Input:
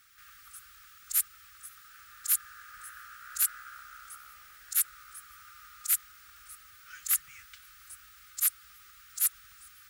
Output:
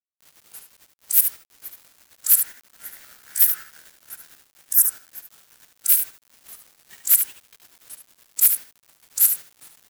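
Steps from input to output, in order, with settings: sawtooth pitch modulation +4 st, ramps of 435 ms; gate -44 dBFS, range -9 dB; tilt EQ +3 dB/octave; in parallel at -1 dB: compression 12:1, threshold -30 dBFS, peak gain reduction 19 dB; on the sum: spectral selection erased 4.63–5.62 s, 1.9–5 kHz; bit crusher 7-bit; on a send: delay 73 ms -7.5 dB

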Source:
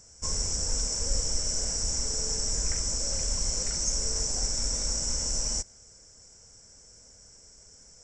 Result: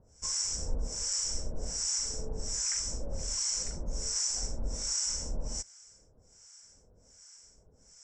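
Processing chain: harmonic tremolo 1.3 Hz, depth 100%, crossover 930 Hz

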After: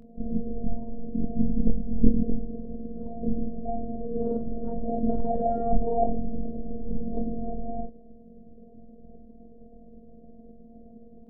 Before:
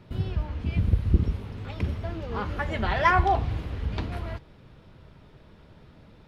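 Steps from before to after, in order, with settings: elliptic low-pass 640 Hz, stop band 40 dB; robot voice 232 Hz; granular stretch 1.8×, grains 104 ms; trim +9 dB

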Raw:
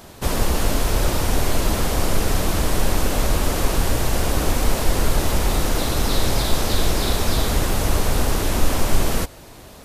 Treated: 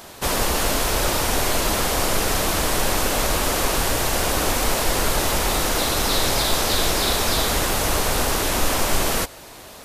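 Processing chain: bass shelf 330 Hz -11 dB; trim +4.5 dB

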